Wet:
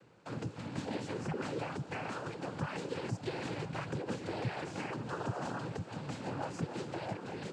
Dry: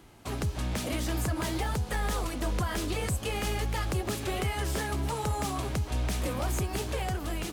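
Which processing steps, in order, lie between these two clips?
high-shelf EQ 3,400 Hz −11.5 dB
cochlear-implant simulation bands 8
level −4.5 dB

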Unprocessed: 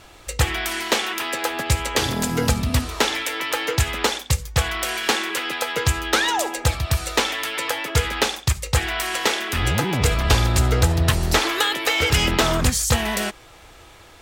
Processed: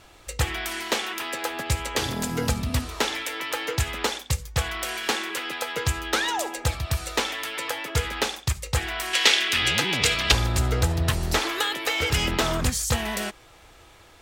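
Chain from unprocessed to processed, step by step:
0:09.13–0:10.32: meter weighting curve D
level −5 dB

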